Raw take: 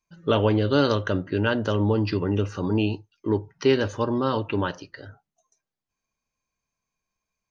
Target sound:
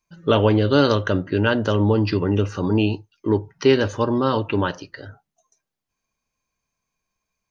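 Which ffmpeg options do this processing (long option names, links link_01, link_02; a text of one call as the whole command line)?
ffmpeg -i in.wav -af "bandreject=frequency=7800:width=24,volume=4dB" out.wav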